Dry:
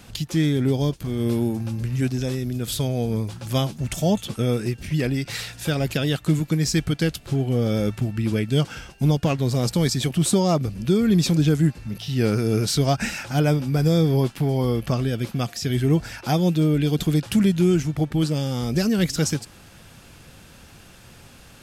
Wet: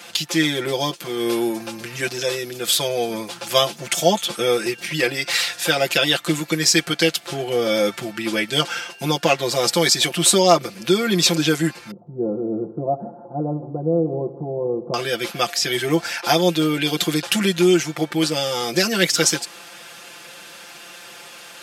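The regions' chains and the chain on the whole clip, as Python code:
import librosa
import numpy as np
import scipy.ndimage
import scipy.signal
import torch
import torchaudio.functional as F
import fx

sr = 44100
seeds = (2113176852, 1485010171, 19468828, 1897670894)

y = fx.chain(x, sr, fx.gaussian_blur(sigma=14.0),
    fx.echo_heads(ms=80, heads='first and second', feedback_pct=45, wet_db=-18.0), at=(11.91, 14.94))
y = scipy.signal.sosfilt(scipy.signal.butter(2, 420.0, 'highpass', fs=sr, output='sos'), y)
y = fx.peak_eq(y, sr, hz=2900.0, db=4.0, octaves=3.0)
y = y + 0.89 * np.pad(y, (int(5.8 * sr / 1000.0), 0))[:len(y)]
y = F.gain(torch.from_numpy(y), 5.0).numpy()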